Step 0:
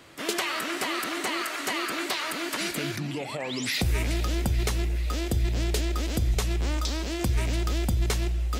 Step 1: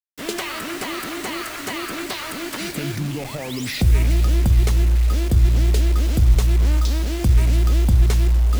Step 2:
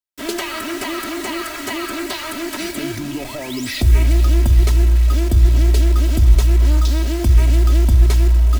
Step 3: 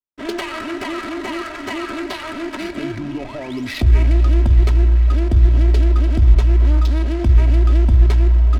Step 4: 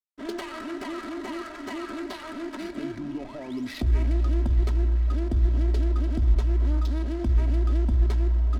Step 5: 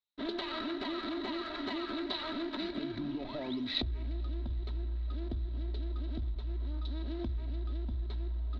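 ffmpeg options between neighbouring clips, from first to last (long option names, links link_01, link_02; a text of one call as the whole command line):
ffmpeg -i in.wav -af "acrusher=bits=5:mix=0:aa=0.000001,areverse,acompressor=mode=upward:threshold=-29dB:ratio=2.5,areverse,lowshelf=frequency=220:gain=12" out.wav
ffmpeg -i in.wav -af "aecho=1:1:3.1:0.81" out.wav
ffmpeg -i in.wav -af "adynamicsmooth=sensitivity=2.5:basefreq=1300" out.wav
ffmpeg -i in.wav -af "equalizer=frequency=100:width_type=o:width=0.67:gain=-6,equalizer=frequency=250:width_type=o:width=0.67:gain=4,equalizer=frequency=2500:width_type=o:width=0.67:gain=-5,volume=-9dB" out.wav
ffmpeg -i in.wav -af "acompressor=threshold=-33dB:ratio=12,lowpass=frequency=3900:width_type=q:width=12,highshelf=frequency=2800:gain=-10" out.wav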